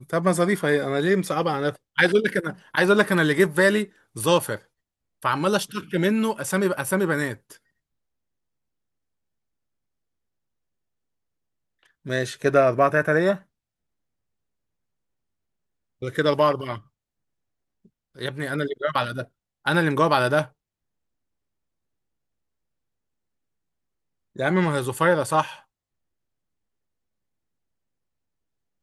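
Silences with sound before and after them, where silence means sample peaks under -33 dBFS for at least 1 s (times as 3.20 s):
7.52–12.06 s
13.37–16.02 s
16.78–18.19 s
20.44–24.36 s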